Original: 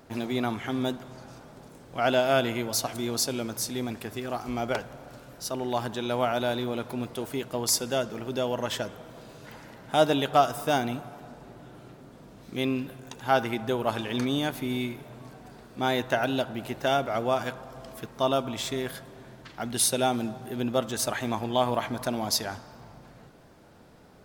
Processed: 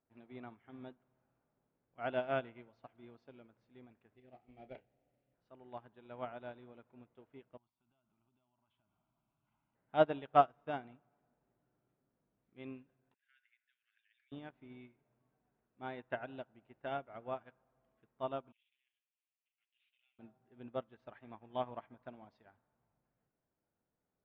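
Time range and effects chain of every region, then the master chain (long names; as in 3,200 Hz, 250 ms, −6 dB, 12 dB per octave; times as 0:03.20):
0:04.16–0:05.34: variable-slope delta modulation 32 kbit/s + flat-topped bell 1,200 Hz −11.5 dB 1 octave + double-tracking delay 31 ms −7 dB
0:07.57–0:09.75: downward compressor 10 to 1, threshold −37 dBFS + phaser with its sweep stopped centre 1,800 Hz, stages 6
0:13.14–0:14.32: Butterworth high-pass 1,600 Hz 72 dB per octave + spectral tilt −1.5 dB per octave
0:18.52–0:20.19: lower of the sound and its delayed copy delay 7.8 ms + flat-topped band-pass 2,900 Hz, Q 2.8 + log-companded quantiser 8 bits
whole clip: low-pass filter 2,700 Hz 24 dB per octave; expander for the loud parts 2.5 to 1, over −36 dBFS; level −4 dB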